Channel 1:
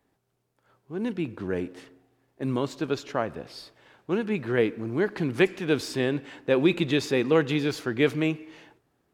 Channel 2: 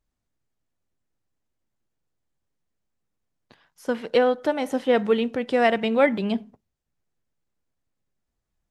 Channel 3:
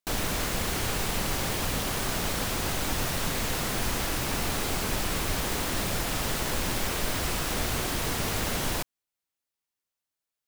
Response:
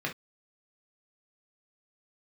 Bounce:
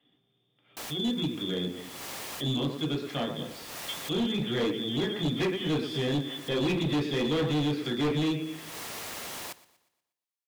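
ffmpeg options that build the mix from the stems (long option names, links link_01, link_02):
-filter_complex "[0:a]equalizer=frequency=230:width=1.1:gain=6.5,volume=-4dB,asplit=4[link_01][link_02][link_03][link_04];[link_02]volume=-5dB[link_05];[link_03]volume=-9.5dB[link_06];[1:a]volume=-12dB[link_07];[2:a]highpass=frequency=560:poles=1,adelay=700,volume=-7dB,asplit=2[link_08][link_09];[link_09]volume=-19dB[link_10];[link_04]apad=whole_len=492773[link_11];[link_08][link_11]sidechaincompress=threshold=-52dB:ratio=4:attack=48:release=243[link_12];[link_01][link_07]amix=inputs=2:normalize=0,lowpass=frequency=3100:width_type=q:width=0.5098,lowpass=frequency=3100:width_type=q:width=0.6013,lowpass=frequency=3100:width_type=q:width=0.9,lowpass=frequency=3100:width_type=q:width=2.563,afreqshift=-3700,alimiter=level_in=2dB:limit=-24dB:level=0:latency=1:release=376,volume=-2dB,volume=0dB[link_13];[3:a]atrim=start_sample=2205[link_14];[link_05][link_14]afir=irnorm=-1:irlink=0[link_15];[link_06][link_10]amix=inputs=2:normalize=0,aecho=0:1:120|240|360|480|600|720:1|0.42|0.176|0.0741|0.0311|0.0131[link_16];[link_12][link_13][link_15][link_16]amix=inputs=4:normalize=0,bandreject=frequency=1500:width=20,volume=21dB,asoftclip=hard,volume=-21dB,alimiter=limit=-24dB:level=0:latency=1:release=160"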